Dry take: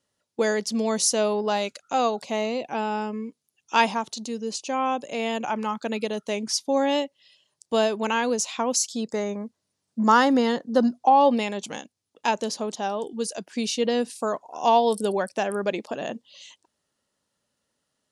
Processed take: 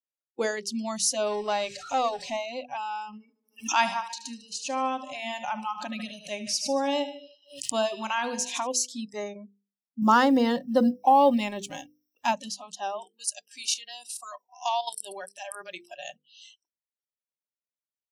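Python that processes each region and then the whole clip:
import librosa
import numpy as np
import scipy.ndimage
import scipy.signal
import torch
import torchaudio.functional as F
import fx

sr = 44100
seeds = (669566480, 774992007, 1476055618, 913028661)

y = fx.chain(x, sr, fx.zero_step(step_db=-32.0),
    fx.lowpass(hz=7700.0, slope=24), at=(1.26, 2.37))
y = fx.chain(y, sr, fx.echo_feedback(ms=76, feedback_pct=59, wet_db=-11.5),
    fx.pre_swell(db_per_s=97.0), at=(3.05, 8.67))
y = fx.chain(y, sr, fx.law_mismatch(coded='mu'),
    fx.low_shelf(hz=400.0, db=6.0), at=(10.02, 12.33))
y = fx.chain(y, sr, fx.tilt_eq(slope=3.0),
    fx.level_steps(step_db=11), at=(13.08, 16.14))
y = fx.low_shelf(y, sr, hz=110.0, db=-11.0)
y = fx.noise_reduce_blind(y, sr, reduce_db=27)
y = fx.hum_notches(y, sr, base_hz=50, count=10)
y = y * 10.0 ** (-3.0 / 20.0)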